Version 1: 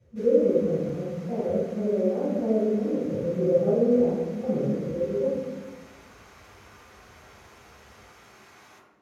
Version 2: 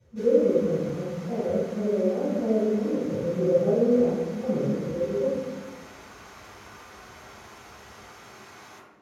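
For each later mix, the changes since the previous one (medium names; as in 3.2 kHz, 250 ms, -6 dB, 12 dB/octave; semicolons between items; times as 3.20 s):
background: send +6.0 dB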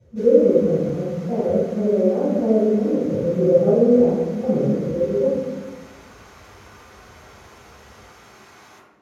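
speech +6.5 dB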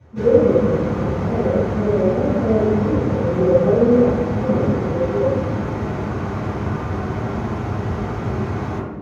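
background: remove differentiator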